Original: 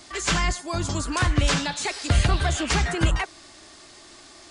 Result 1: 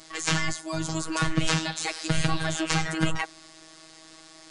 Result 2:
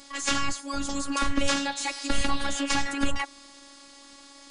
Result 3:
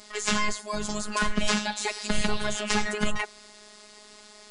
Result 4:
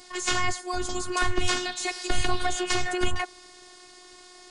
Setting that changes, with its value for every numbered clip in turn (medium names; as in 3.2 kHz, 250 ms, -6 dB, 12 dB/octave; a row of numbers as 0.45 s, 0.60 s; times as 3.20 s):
robot voice, frequency: 160 Hz, 280 Hz, 210 Hz, 360 Hz